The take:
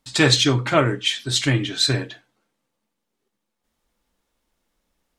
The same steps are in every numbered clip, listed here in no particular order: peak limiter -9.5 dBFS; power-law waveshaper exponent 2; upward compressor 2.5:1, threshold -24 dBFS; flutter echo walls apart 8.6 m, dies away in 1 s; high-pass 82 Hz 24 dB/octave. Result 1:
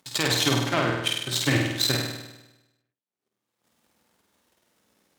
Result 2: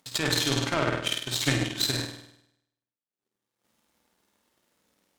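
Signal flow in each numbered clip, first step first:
peak limiter > power-law waveshaper > high-pass > upward compressor > flutter echo; flutter echo > peak limiter > high-pass > power-law waveshaper > upward compressor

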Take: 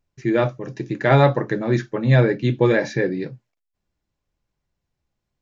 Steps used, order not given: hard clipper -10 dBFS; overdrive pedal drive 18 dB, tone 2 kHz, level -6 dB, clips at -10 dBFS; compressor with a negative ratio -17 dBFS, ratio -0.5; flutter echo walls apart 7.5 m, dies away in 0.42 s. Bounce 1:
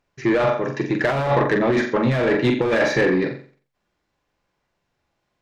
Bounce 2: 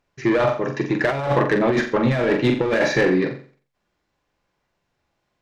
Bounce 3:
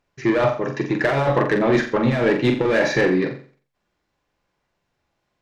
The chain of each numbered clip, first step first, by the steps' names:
flutter echo > hard clipper > overdrive pedal > compressor with a negative ratio; overdrive pedal > flutter echo > compressor with a negative ratio > hard clipper; overdrive pedal > compressor with a negative ratio > hard clipper > flutter echo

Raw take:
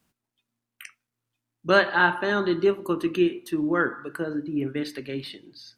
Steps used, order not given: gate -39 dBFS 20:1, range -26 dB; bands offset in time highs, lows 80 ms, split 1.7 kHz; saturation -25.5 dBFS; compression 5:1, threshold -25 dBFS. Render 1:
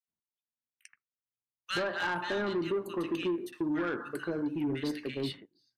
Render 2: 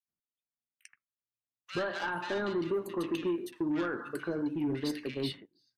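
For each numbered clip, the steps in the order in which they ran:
gate > bands offset in time > compression > saturation; gate > compression > saturation > bands offset in time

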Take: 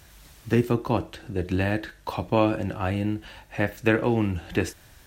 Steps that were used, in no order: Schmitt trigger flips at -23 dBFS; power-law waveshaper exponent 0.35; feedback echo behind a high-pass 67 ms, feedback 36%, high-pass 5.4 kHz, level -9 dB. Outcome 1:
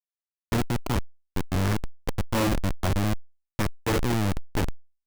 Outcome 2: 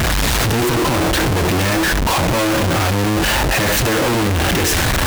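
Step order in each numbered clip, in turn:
feedback echo behind a high-pass > Schmitt trigger > power-law waveshaper; power-law waveshaper > feedback echo behind a high-pass > Schmitt trigger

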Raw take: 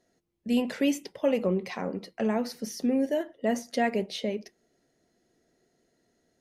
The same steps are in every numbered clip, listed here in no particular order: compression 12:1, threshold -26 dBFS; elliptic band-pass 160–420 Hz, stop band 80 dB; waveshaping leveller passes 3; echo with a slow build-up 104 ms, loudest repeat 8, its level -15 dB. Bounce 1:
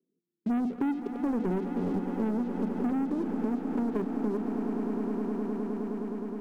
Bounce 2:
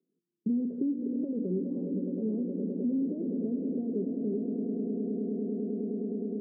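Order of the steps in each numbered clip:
elliptic band-pass > waveshaping leveller > echo with a slow build-up > compression; echo with a slow build-up > waveshaping leveller > compression > elliptic band-pass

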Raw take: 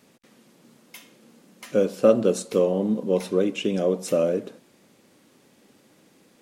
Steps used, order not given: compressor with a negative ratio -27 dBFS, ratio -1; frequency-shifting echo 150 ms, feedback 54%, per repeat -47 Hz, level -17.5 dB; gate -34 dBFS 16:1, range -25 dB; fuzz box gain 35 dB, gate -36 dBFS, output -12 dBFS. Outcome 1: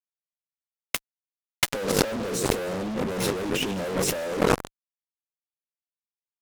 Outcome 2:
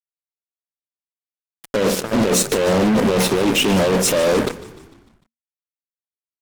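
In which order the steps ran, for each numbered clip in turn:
frequency-shifting echo > fuzz box > compressor with a negative ratio > gate; compressor with a negative ratio > gate > fuzz box > frequency-shifting echo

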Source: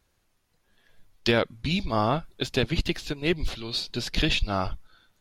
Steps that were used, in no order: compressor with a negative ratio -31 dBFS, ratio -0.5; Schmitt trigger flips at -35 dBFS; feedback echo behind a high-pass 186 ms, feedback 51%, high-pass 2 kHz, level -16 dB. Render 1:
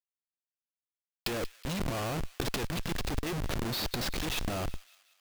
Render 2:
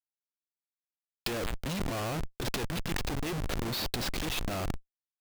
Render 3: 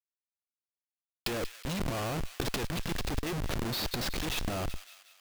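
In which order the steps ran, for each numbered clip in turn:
Schmitt trigger > compressor with a negative ratio > feedback echo behind a high-pass; feedback echo behind a high-pass > Schmitt trigger > compressor with a negative ratio; Schmitt trigger > feedback echo behind a high-pass > compressor with a negative ratio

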